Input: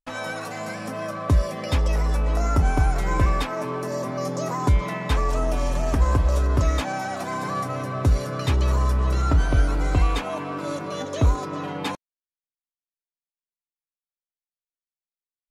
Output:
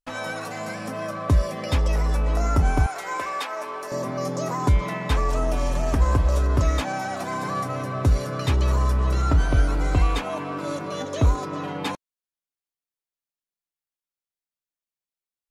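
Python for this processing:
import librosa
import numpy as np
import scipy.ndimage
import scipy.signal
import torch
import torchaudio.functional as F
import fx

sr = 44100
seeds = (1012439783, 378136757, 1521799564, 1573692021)

y = fx.highpass(x, sr, hz=620.0, slope=12, at=(2.86, 3.92))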